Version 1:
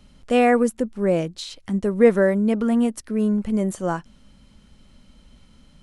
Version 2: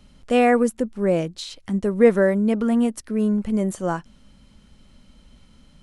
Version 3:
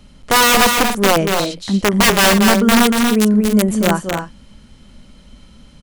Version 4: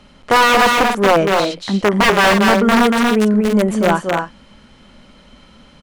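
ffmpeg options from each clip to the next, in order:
ffmpeg -i in.wav -af anull out.wav
ffmpeg -i in.wav -filter_complex "[0:a]aeval=exprs='(mod(4.73*val(0)+1,2)-1)/4.73':channel_layout=same,asplit=2[link_01][link_02];[link_02]aecho=0:1:236.2|282.8:0.562|0.282[link_03];[link_01][link_03]amix=inputs=2:normalize=0,volume=7dB" out.wav
ffmpeg -i in.wav -filter_complex "[0:a]asplit=2[link_01][link_02];[link_02]highpass=frequency=720:poles=1,volume=15dB,asoftclip=type=tanh:threshold=-1dB[link_03];[link_01][link_03]amix=inputs=2:normalize=0,lowpass=frequency=1700:poles=1,volume=-6dB,volume=-1dB" out.wav

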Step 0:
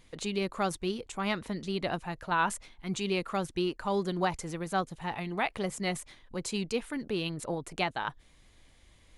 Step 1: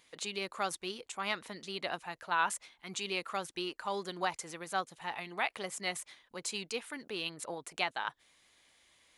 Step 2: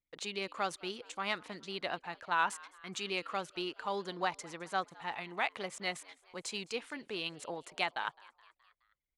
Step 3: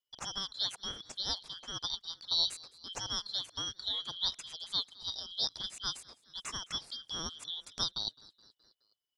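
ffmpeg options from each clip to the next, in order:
ffmpeg -i in.wav -af "highpass=frequency=960:poles=1" out.wav
ffmpeg -i in.wav -filter_complex "[0:a]anlmdn=0.001,adynamicsmooth=sensitivity=2.5:basefreq=7300,asplit=5[link_01][link_02][link_03][link_04][link_05];[link_02]adelay=211,afreqshift=95,volume=-23dB[link_06];[link_03]adelay=422,afreqshift=190,volume=-28.2dB[link_07];[link_04]adelay=633,afreqshift=285,volume=-33.4dB[link_08];[link_05]adelay=844,afreqshift=380,volume=-38.6dB[link_09];[link_01][link_06][link_07][link_08][link_09]amix=inputs=5:normalize=0" out.wav
ffmpeg -i in.wav -af "afftfilt=real='real(if(lt(b,272),68*(eq(floor(b/68),0)*2+eq(floor(b/68),1)*3+eq(floor(b/68),2)*0+eq(floor(b/68),3)*1)+mod(b,68),b),0)':imag='imag(if(lt(b,272),68*(eq(floor(b/68),0)*2+eq(floor(b/68),1)*3+eq(floor(b/68),2)*0+eq(floor(b/68),3)*1)+mod(b,68),b),0)':win_size=2048:overlap=0.75" out.wav

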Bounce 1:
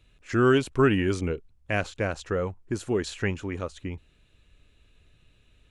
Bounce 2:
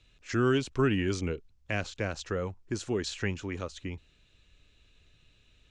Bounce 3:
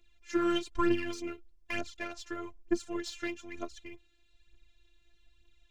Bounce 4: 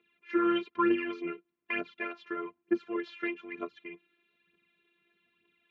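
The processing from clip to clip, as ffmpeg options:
ffmpeg -i in.wav -filter_complex "[0:a]lowpass=frequency=6300:width=0.5412,lowpass=frequency=6300:width=1.3066,aemphasis=mode=production:type=75kf,acrossover=split=330[link_01][link_02];[link_02]acompressor=threshold=-32dB:ratio=1.5[link_03];[link_01][link_03]amix=inputs=2:normalize=0,volume=-3.5dB" out.wav
ffmpeg -i in.wav -af "aeval=exprs='0.2*(cos(1*acos(clip(val(0)/0.2,-1,1)))-cos(1*PI/2))+0.0126*(cos(3*acos(clip(val(0)/0.2,-1,1)))-cos(3*PI/2))+0.00447*(cos(6*acos(clip(val(0)/0.2,-1,1)))-cos(6*PI/2))+0.00794*(cos(7*acos(clip(val(0)/0.2,-1,1)))-cos(7*PI/2))':channel_layout=same,aphaser=in_gain=1:out_gain=1:delay=3.9:decay=0.7:speed=1.1:type=triangular,afftfilt=real='hypot(re,im)*cos(PI*b)':imag='0':win_size=512:overlap=0.75" out.wav
ffmpeg -i in.wav -filter_complex "[0:a]asplit=2[link_01][link_02];[link_02]asoftclip=type=tanh:threshold=-26dB,volume=-10.5dB[link_03];[link_01][link_03]amix=inputs=2:normalize=0,highpass=frequency=170:width=0.5412,highpass=frequency=170:width=1.3066,equalizer=frequency=180:width_type=q:width=4:gain=9,equalizer=frequency=300:width_type=q:width=4:gain=-4,equalizer=frequency=450:width_type=q:width=4:gain=9,equalizer=frequency=700:width_type=q:width=4:gain=-6,equalizer=frequency=1200:width_type=q:width=4:gain=6,equalizer=frequency=2300:width_type=q:width=4:gain=4,lowpass=frequency=2900:width=0.5412,lowpass=frequency=2900:width=1.3066" out.wav

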